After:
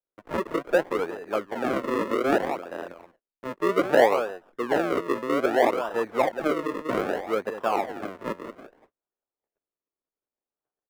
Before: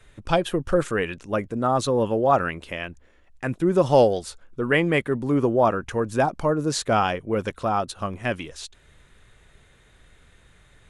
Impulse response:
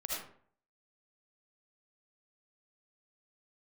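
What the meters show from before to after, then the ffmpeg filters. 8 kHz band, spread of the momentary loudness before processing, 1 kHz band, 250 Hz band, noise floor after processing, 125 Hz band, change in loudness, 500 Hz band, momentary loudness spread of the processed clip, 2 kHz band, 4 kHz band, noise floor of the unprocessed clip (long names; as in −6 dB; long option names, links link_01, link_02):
−10.5 dB, 13 LU, −3.0 dB, −4.0 dB, below −85 dBFS, −15.5 dB, −2.5 dB, −2.0 dB, 13 LU, −2.0 dB, −6.0 dB, −57 dBFS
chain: -filter_complex "[0:a]asplit=2[link_01][link_02];[link_02]adelay=186.6,volume=-10dB,highshelf=frequency=4000:gain=-4.2[link_03];[link_01][link_03]amix=inputs=2:normalize=0,adynamicsmooth=sensitivity=5.5:basefreq=5200,acrusher=samples=39:mix=1:aa=0.000001:lfo=1:lforange=39:lforate=0.63,acrossover=split=280 2200:gain=0.0631 1 0.141[link_04][link_05][link_06];[link_04][link_05][link_06]amix=inputs=3:normalize=0,agate=range=-34dB:threshold=-57dB:ratio=16:detection=peak"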